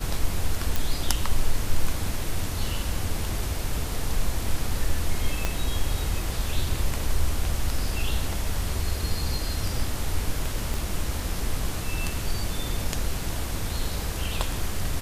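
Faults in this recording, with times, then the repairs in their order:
0:00.76: click
0:05.45: click −10 dBFS
0:10.74: click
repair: click removal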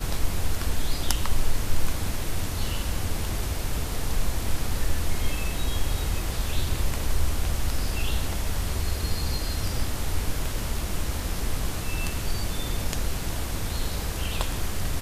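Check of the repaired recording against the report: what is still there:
0:05.45: click
0:10.74: click

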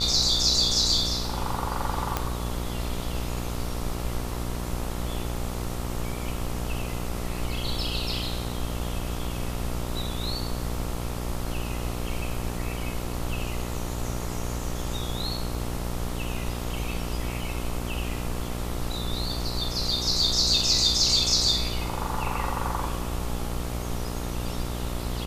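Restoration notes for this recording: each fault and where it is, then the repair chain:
mains buzz 60 Hz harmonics 23 −32 dBFS
0:02.17: click −9 dBFS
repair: click removal
hum removal 60 Hz, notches 23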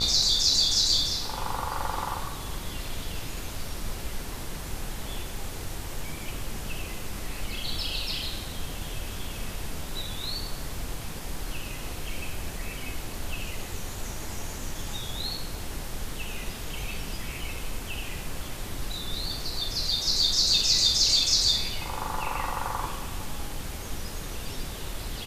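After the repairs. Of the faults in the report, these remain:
none of them is left

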